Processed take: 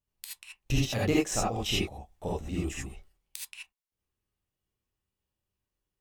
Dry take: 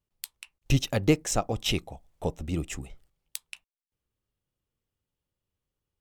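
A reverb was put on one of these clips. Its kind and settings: non-linear reverb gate 0.1 s rising, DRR -5.5 dB; gain -6.5 dB

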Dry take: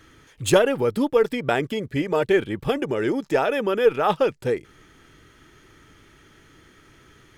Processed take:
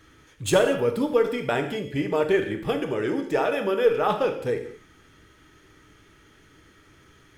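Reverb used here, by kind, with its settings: non-linear reverb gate 0.26 s falling, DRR 4.5 dB; gain -3.5 dB

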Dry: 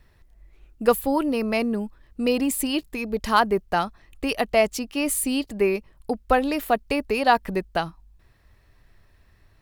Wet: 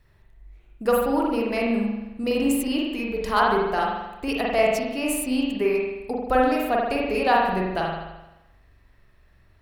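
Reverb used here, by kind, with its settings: spring tank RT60 1 s, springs 43 ms, chirp 35 ms, DRR -3 dB; gain -4.5 dB

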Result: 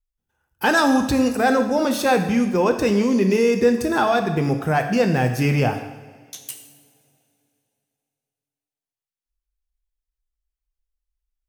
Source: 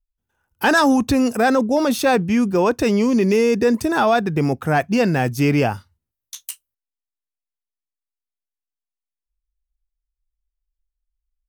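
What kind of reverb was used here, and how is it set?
two-slope reverb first 0.91 s, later 2.9 s, from -18 dB, DRR 5 dB; gain -2.5 dB

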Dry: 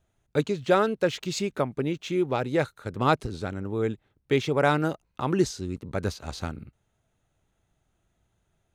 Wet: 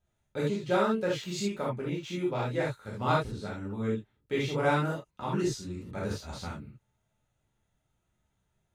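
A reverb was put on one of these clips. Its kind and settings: non-linear reverb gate 0.1 s flat, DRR -6.5 dB; gain -11.5 dB

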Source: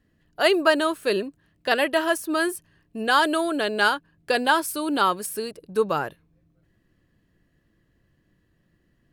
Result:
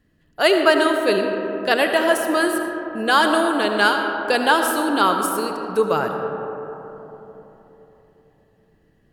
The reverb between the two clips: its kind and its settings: digital reverb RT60 3.8 s, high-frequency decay 0.3×, pre-delay 35 ms, DRR 4 dB; gain +3 dB

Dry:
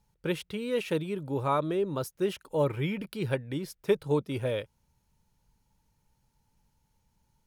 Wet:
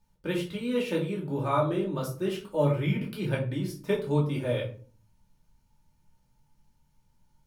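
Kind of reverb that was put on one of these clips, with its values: shoebox room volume 290 m³, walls furnished, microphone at 2.6 m; gain -4 dB

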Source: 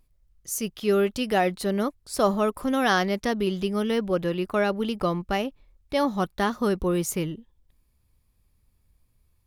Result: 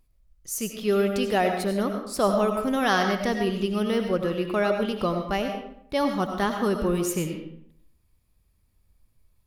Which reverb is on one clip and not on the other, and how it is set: digital reverb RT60 0.68 s, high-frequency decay 0.7×, pre-delay 55 ms, DRR 4.5 dB; gain -1 dB

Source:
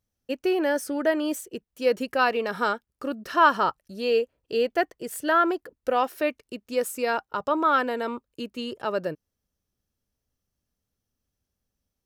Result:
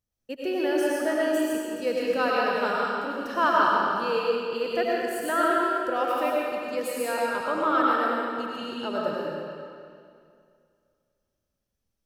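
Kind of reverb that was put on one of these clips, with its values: digital reverb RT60 2.3 s, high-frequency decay 0.9×, pre-delay 60 ms, DRR -5 dB; gain -6 dB

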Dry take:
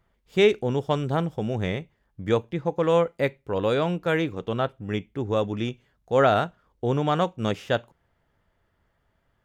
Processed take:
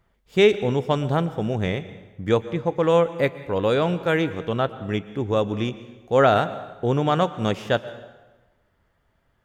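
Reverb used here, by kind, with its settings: plate-style reverb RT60 1.2 s, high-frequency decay 0.8×, pre-delay 0.105 s, DRR 14.5 dB; gain +2.5 dB

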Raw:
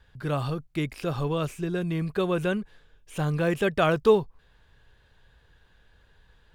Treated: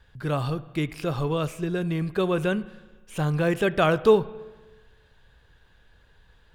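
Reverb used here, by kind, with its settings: spring tank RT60 1.3 s, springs 32/53 ms, chirp 50 ms, DRR 16.5 dB; gain +1.5 dB

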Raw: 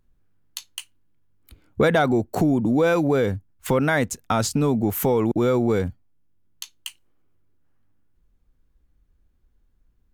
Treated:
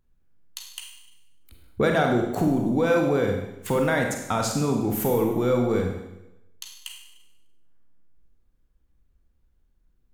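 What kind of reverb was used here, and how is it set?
Schroeder reverb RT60 0.91 s, combs from 33 ms, DRR 2 dB; gain -4 dB

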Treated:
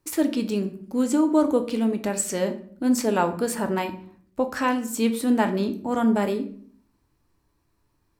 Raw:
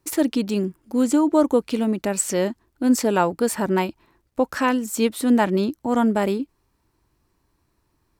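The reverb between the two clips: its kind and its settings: shoebox room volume 66 m³, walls mixed, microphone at 0.33 m; gain -3.5 dB

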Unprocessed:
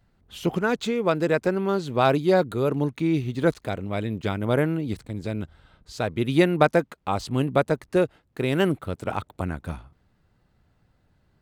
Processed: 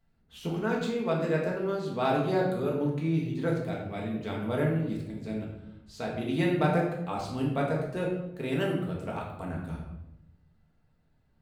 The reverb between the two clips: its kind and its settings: shoebox room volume 290 m³, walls mixed, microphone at 1.6 m; gain -11.5 dB

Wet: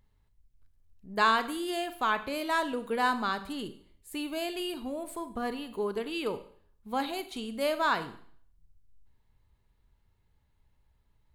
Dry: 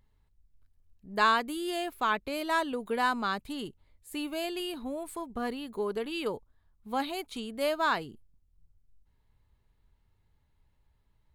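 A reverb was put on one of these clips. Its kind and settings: Schroeder reverb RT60 0.56 s, combs from 32 ms, DRR 11 dB

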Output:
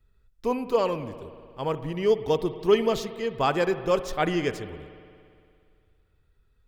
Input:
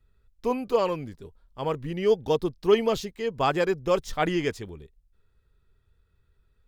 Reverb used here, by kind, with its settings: spring tank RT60 2.3 s, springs 57 ms, chirp 45 ms, DRR 12 dB

